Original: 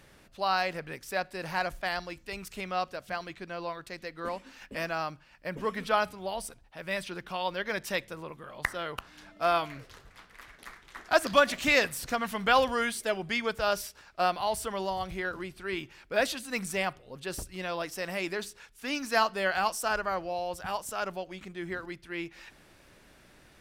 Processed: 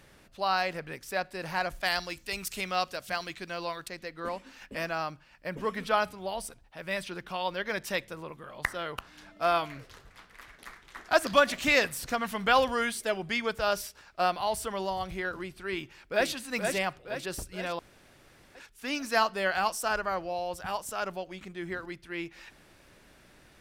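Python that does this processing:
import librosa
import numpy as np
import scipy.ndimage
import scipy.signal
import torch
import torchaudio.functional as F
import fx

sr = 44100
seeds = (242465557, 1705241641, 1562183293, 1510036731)

y = fx.high_shelf(x, sr, hz=2600.0, db=10.5, at=(1.8, 3.88))
y = fx.echo_throw(y, sr, start_s=15.72, length_s=0.59, ms=470, feedback_pct=55, wet_db=-5.0)
y = fx.edit(y, sr, fx.room_tone_fill(start_s=17.79, length_s=0.76), tone=tone)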